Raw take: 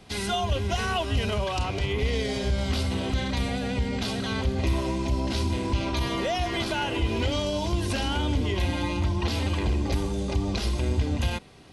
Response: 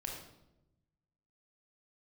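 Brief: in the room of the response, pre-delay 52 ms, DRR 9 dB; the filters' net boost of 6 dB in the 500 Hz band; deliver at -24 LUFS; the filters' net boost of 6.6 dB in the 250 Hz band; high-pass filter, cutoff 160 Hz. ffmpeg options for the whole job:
-filter_complex "[0:a]highpass=160,equalizer=f=250:t=o:g=7.5,equalizer=f=500:t=o:g=5.5,asplit=2[a][b];[1:a]atrim=start_sample=2205,adelay=52[c];[b][c]afir=irnorm=-1:irlink=0,volume=-8.5dB[d];[a][d]amix=inputs=2:normalize=0,volume=0.5dB"

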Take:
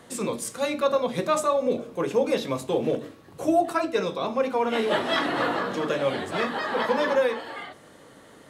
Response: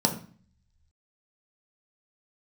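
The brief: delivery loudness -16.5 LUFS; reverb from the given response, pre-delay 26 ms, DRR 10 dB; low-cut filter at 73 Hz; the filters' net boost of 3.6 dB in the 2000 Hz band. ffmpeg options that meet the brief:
-filter_complex "[0:a]highpass=73,equalizer=f=2k:t=o:g=4.5,asplit=2[a][b];[1:a]atrim=start_sample=2205,adelay=26[c];[b][c]afir=irnorm=-1:irlink=0,volume=-21.5dB[d];[a][d]amix=inputs=2:normalize=0,volume=7.5dB"

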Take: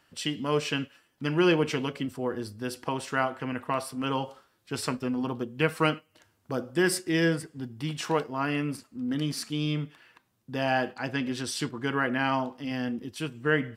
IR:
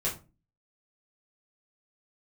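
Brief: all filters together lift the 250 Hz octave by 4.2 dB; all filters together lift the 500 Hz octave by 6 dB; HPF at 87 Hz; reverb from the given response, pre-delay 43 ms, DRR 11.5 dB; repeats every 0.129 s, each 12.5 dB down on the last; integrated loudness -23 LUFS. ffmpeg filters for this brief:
-filter_complex "[0:a]highpass=87,equalizer=f=250:t=o:g=3,equalizer=f=500:t=o:g=6.5,aecho=1:1:129|258|387:0.237|0.0569|0.0137,asplit=2[a][b];[1:a]atrim=start_sample=2205,adelay=43[c];[b][c]afir=irnorm=-1:irlink=0,volume=-18dB[d];[a][d]amix=inputs=2:normalize=0,volume=2.5dB"

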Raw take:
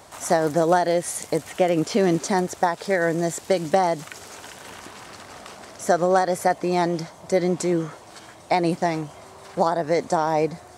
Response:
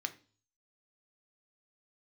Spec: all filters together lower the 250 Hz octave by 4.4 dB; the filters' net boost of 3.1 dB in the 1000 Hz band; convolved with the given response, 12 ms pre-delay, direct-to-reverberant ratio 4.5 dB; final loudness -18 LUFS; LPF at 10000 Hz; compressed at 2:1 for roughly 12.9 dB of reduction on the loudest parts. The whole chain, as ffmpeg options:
-filter_complex "[0:a]lowpass=10k,equalizer=f=250:t=o:g=-8.5,equalizer=f=1k:t=o:g=5.5,acompressor=threshold=-37dB:ratio=2,asplit=2[a][b];[1:a]atrim=start_sample=2205,adelay=12[c];[b][c]afir=irnorm=-1:irlink=0,volume=-5.5dB[d];[a][d]amix=inputs=2:normalize=0,volume=15dB"

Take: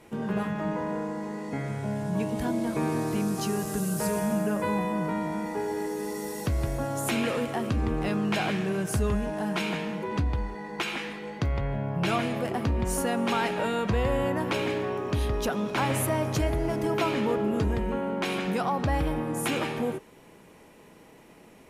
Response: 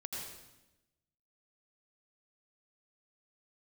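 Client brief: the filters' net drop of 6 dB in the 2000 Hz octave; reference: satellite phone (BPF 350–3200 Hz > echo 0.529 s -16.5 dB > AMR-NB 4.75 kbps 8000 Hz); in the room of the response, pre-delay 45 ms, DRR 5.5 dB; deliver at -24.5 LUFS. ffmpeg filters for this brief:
-filter_complex "[0:a]equalizer=f=2k:t=o:g=-7,asplit=2[a][b];[1:a]atrim=start_sample=2205,adelay=45[c];[b][c]afir=irnorm=-1:irlink=0,volume=-5dB[d];[a][d]amix=inputs=2:normalize=0,highpass=350,lowpass=3.2k,aecho=1:1:529:0.15,volume=9.5dB" -ar 8000 -c:a libopencore_amrnb -b:a 4750

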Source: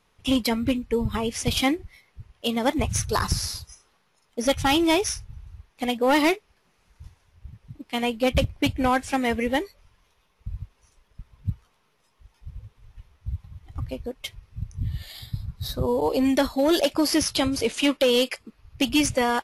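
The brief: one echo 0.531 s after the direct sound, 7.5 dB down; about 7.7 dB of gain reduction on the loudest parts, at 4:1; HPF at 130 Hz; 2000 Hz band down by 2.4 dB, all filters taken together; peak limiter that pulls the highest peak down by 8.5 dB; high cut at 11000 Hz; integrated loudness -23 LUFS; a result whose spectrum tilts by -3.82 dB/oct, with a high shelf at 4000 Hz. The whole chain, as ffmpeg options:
-af "highpass=130,lowpass=11k,equalizer=f=2k:t=o:g=-4,highshelf=f=4k:g=4,acompressor=threshold=-26dB:ratio=4,alimiter=limit=-22dB:level=0:latency=1,aecho=1:1:531:0.422,volume=9.5dB"

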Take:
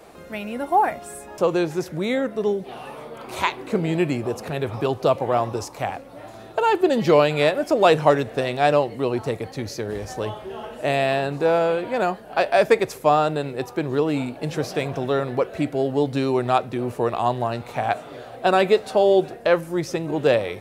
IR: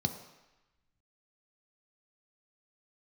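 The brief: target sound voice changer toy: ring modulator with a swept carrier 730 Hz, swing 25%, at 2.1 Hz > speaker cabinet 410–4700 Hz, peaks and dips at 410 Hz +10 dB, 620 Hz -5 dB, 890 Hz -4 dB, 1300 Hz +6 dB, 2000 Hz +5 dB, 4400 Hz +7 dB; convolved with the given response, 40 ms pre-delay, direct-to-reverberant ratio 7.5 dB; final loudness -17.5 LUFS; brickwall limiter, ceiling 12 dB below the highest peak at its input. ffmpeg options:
-filter_complex "[0:a]alimiter=limit=-14.5dB:level=0:latency=1,asplit=2[a][b];[1:a]atrim=start_sample=2205,adelay=40[c];[b][c]afir=irnorm=-1:irlink=0,volume=-11.5dB[d];[a][d]amix=inputs=2:normalize=0,aeval=exprs='val(0)*sin(2*PI*730*n/s+730*0.25/2.1*sin(2*PI*2.1*n/s))':c=same,highpass=410,equalizer=f=410:t=q:w=4:g=10,equalizer=f=620:t=q:w=4:g=-5,equalizer=f=890:t=q:w=4:g=-4,equalizer=f=1.3k:t=q:w=4:g=6,equalizer=f=2k:t=q:w=4:g=5,equalizer=f=4.4k:t=q:w=4:g=7,lowpass=f=4.7k:w=0.5412,lowpass=f=4.7k:w=1.3066,volume=7.5dB"

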